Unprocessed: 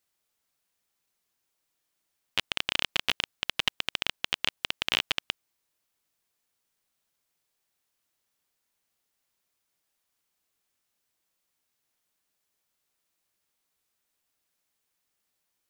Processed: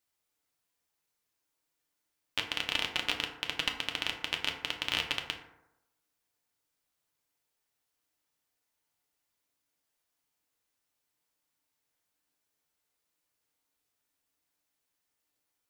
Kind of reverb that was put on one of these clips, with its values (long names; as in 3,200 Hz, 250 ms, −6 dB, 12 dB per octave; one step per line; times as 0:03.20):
feedback delay network reverb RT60 0.9 s, low-frequency decay 0.9×, high-frequency decay 0.4×, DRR 1.5 dB
level −4.5 dB